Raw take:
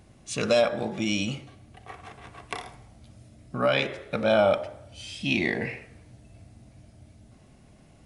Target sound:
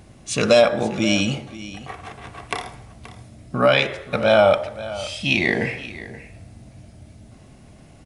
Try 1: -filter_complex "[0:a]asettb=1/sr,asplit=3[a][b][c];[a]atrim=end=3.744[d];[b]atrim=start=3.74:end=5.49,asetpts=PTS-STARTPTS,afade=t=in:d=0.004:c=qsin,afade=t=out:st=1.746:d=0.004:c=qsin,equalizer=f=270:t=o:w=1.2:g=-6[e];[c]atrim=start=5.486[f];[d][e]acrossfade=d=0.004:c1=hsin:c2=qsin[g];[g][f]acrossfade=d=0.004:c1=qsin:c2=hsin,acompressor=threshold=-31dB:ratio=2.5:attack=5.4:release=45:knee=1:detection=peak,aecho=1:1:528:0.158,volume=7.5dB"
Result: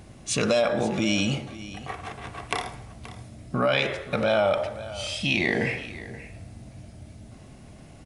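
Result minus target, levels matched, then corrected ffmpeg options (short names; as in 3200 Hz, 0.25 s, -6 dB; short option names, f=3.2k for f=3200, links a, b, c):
compressor: peak gain reduction +9.5 dB
-filter_complex "[0:a]asettb=1/sr,asplit=3[a][b][c];[a]atrim=end=3.744[d];[b]atrim=start=3.74:end=5.49,asetpts=PTS-STARTPTS,afade=t=in:d=0.004:c=qsin,afade=t=out:st=1.746:d=0.004:c=qsin,equalizer=f=270:t=o:w=1.2:g=-6[e];[c]atrim=start=5.486[f];[d][e]acrossfade=d=0.004:c1=hsin:c2=qsin[g];[g][f]acrossfade=d=0.004:c1=qsin:c2=hsin,aecho=1:1:528:0.158,volume=7.5dB"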